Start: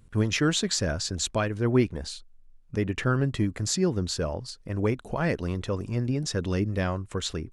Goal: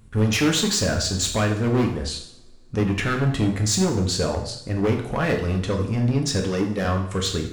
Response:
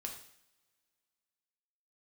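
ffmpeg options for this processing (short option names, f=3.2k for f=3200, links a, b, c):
-filter_complex "[0:a]asettb=1/sr,asplit=3[a][b][c];[a]atrim=end=6.404[d];[b]atrim=start=6.4:end=6.85,asetpts=PTS-STARTPTS,afade=t=in:d=0.004:c=qsin,afade=t=out:st=0.446:d=0.004:c=qsin,highpass=200[e];[c]atrim=start=6.846[f];[d][e]acrossfade=d=0.004:c1=hsin:c2=qsin[g];[g][f]acrossfade=d=0.004:c1=qsin:c2=hsin,asoftclip=type=hard:threshold=-24dB[h];[1:a]atrim=start_sample=2205[i];[h][i]afir=irnorm=-1:irlink=0,volume=9dB"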